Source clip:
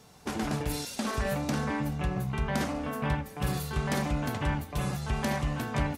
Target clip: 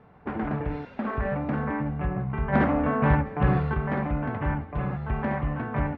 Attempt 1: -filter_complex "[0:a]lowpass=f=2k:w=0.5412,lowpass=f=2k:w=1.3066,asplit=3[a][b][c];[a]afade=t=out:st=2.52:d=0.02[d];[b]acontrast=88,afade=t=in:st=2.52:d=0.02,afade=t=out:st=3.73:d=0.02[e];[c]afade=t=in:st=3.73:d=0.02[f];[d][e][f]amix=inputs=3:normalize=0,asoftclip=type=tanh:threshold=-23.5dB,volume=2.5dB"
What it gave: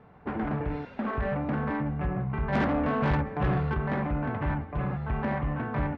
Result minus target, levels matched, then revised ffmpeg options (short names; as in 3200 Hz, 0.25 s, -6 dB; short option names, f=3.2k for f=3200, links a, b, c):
soft clip: distortion +13 dB
-filter_complex "[0:a]lowpass=f=2k:w=0.5412,lowpass=f=2k:w=1.3066,asplit=3[a][b][c];[a]afade=t=out:st=2.52:d=0.02[d];[b]acontrast=88,afade=t=in:st=2.52:d=0.02,afade=t=out:st=3.73:d=0.02[e];[c]afade=t=in:st=3.73:d=0.02[f];[d][e][f]amix=inputs=3:normalize=0,asoftclip=type=tanh:threshold=-12.5dB,volume=2.5dB"